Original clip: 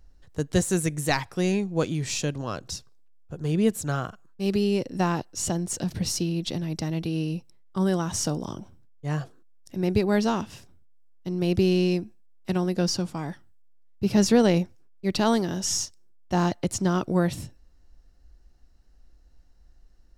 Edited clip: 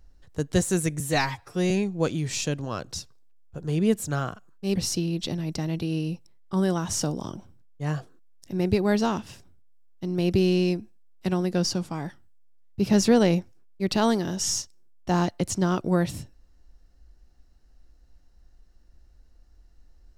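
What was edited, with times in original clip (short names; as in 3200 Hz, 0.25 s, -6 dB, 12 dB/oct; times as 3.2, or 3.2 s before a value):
1–1.47 stretch 1.5×
4.52–5.99 cut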